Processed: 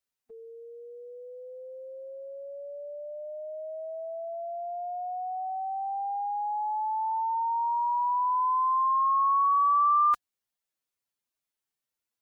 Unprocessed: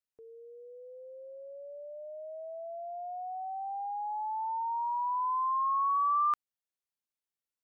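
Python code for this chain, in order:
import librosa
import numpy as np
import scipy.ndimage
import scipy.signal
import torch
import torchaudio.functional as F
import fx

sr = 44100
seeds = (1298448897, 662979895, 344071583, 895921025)

y = fx.stretch_vocoder(x, sr, factor=1.6)
y = y * 10.0 ** (5.0 / 20.0)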